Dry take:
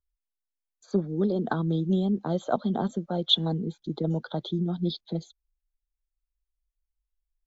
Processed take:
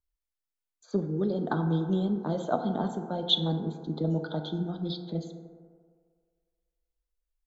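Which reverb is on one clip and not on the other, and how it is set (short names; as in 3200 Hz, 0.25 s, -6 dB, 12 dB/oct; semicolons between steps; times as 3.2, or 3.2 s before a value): FDN reverb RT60 1.9 s, low-frequency decay 0.75×, high-frequency decay 0.3×, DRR 5 dB; gain -2.5 dB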